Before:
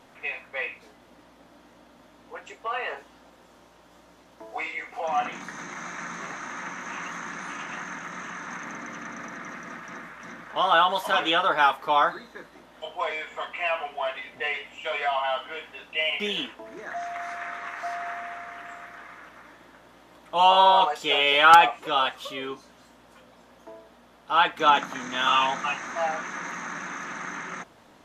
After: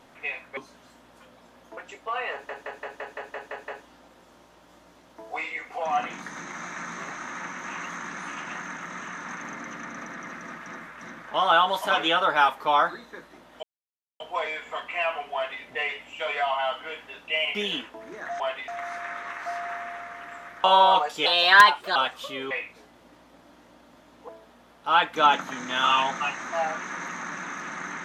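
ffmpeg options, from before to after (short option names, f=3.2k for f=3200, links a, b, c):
-filter_complex "[0:a]asplit=19[a][b][c][d][e][f][g][h][i][j][k][l][m][n][o][p][q][r][s];[a]atrim=end=0.572[t];[b]atrim=start=22.518:end=23.722[u];[c]atrim=start=2.348:end=3.072[v];[d]atrim=start=2.898:end=3.072[w];[e]atrim=start=2.898:end=3.072[x];[f]atrim=start=2.898:end=3.072[y];[g]atrim=start=2.898:end=3.072[z];[h]atrim=start=2.898:end=3.072[aa];[i]atrim=start=2.898:end=3.072[ab];[j]atrim=start=2.898:end=3.072[ac];[k]atrim=start=2.898:end=12.85,asetpts=PTS-STARTPTS,afade=t=out:st=9.948:d=0.004:c=hsin,apad=pad_dur=0.57[ad];[l]atrim=start=12.85:end=17.052,asetpts=PTS-STARTPTS,afade=t=in:d=0.004:c=hsin[ae];[m]atrim=start=13.988:end=14.272[af];[n]atrim=start=17.048:end=19.012[ag];[o]atrim=start=20.498:end=21.124[ah];[p]atrim=start=21.12:end=21.97,asetpts=PTS-STARTPTS,asetrate=53802,aresample=44100,atrim=end_sample=30725,asetpts=PTS-STARTPTS[ai];[q]atrim=start=21.966:end=22.522[aj];[r]atrim=start=0.568:end=2.352[ak];[s]atrim=start=23.718[al];[t][u]acrossfade=d=0.004:c1=hsin:c2=hsin[am];[am][v]acrossfade=d=0.004:c1=hsin:c2=hsin[an];[an][w]acrossfade=d=0.004:c1=hsin:c2=hsin[ao];[ao][x]acrossfade=d=0.004:c1=hsin:c2=hsin[ap];[ap][y]acrossfade=d=0.004:c1=hsin:c2=hsin[aq];[aq][z]acrossfade=d=0.004:c1=hsin:c2=hsin[ar];[ar][aa]acrossfade=d=0.004:c1=hsin:c2=hsin[as];[as][ab]acrossfade=d=0.004:c1=hsin:c2=hsin[at];[at][ac]acrossfade=d=0.004:c1=hsin:c2=hsin[au];[ad][ae]concat=n=2:v=0:a=1[av];[au][av]acrossfade=d=0.004:c1=hsin:c2=hsin[aw];[aw][af]acrossfade=d=0.004:c1=hsin:c2=hsin[ax];[ax][ag]acrossfade=d=0.004:c1=hsin:c2=hsin[ay];[ay][ah]acrossfade=d=0.004:c1=hsin:c2=hsin[az];[az][ai]acrossfade=d=0.004:c1=hsin:c2=hsin[ba];[ba][aj]acrossfade=d=0.004:c1=hsin:c2=hsin[bb];[bb][ak]acrossfade=d=0.004:c1=hsin:c2=hsin[bc];[bc][al]acrossfade=d=0.004:c1=hsin:c2=hsin"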